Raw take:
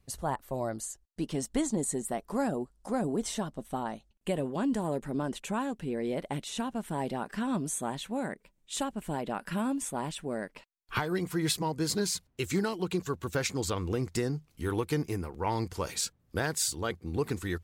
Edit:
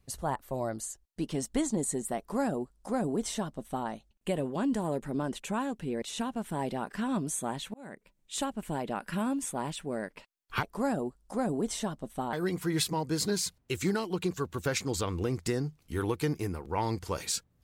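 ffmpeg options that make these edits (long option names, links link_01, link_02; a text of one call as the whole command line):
ffmpeg -i in.wav -filter_complex "[0:a]asplit=5[link_01][link_02][link_03][link_04][link_05];[link_01]atrim=end=6.022[link_06];[link_02]atrim=start=6.408:end=8.13,asetpts=PTS-STARTPTS,afade=type=out:start_time=1.718:duration=0.004:curve=hsin[link_07];[link_03]atrim=start=8.13:end=11.022,asetpts=PTS-STARTPTS,afade=type=in:duration=0.62:curve=qsin[link_08];[link_04]atrim=start=2.178:end=3.882[link_09];[link_05]atrim=start=11.018[link_10];[link_07][link_08]concat=n=2:v=0:a=1[link_11];[link_06][link_11]acrossfade=duration=0.004:curve1=hsin:curve2=hsin[link_12];[link_12][link_09]acrossfade=duration=0.004:curve1=hsin:curve2=hsin[link_13];[link_13][link_10]acrossfade=duration=0.004:curve1=hsin:curve2=hsin" out.wav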